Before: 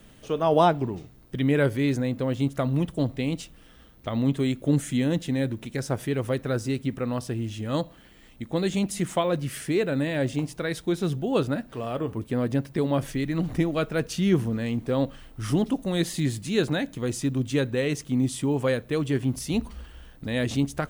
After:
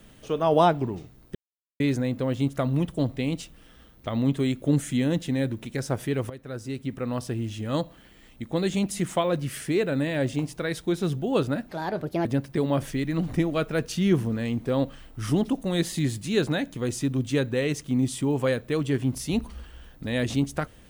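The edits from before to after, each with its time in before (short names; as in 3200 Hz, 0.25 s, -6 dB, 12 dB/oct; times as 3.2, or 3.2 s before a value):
1.35–1.8 mute
6.3–7.22 fade in, from -16.5 dB
11.69–12.46 speed 137%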